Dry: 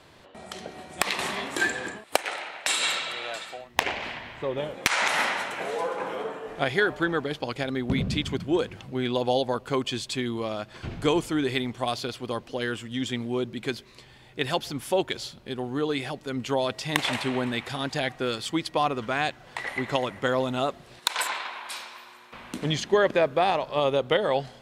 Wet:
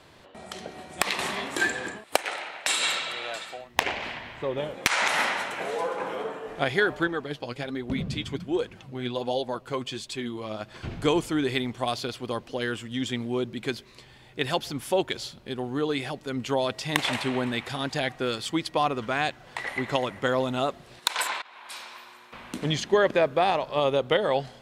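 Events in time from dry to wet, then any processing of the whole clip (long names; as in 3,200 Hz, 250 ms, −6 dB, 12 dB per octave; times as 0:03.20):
0:07.07–0:10.61: flanger 1.3 Hz, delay 1.9 ms, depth 7.7 ms, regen +45%
0:21.42–0:21.92: fade in, from −22 dB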